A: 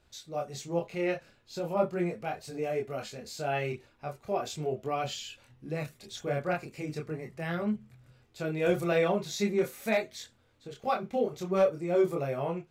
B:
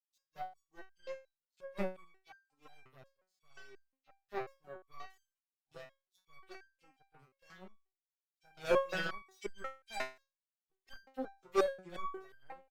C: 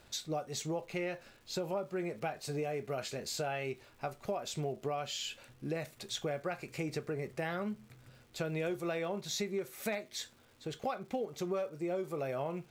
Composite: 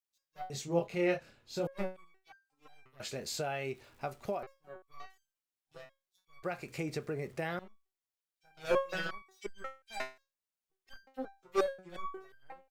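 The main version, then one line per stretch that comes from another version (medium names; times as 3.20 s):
B
0.50–1.67 s: from A
3.00–4.43 s: from C
6.43–7.59 s: from C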